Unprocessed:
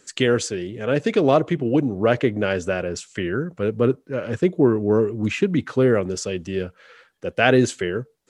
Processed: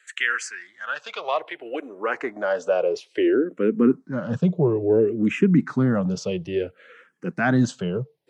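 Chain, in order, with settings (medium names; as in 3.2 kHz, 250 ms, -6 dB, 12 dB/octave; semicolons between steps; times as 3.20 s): high-pass sweep 1.7 kHz -> 160 Hz, 0.76–4.31 s; in parallel at -2 dB: peak limiter -13.5 dBFS, peak gain reduction 11 dB; on the sum: treble shelf 4.5 kHz -9.5 dB; barber-pole phaser -0.59 Hz; trim -3 dB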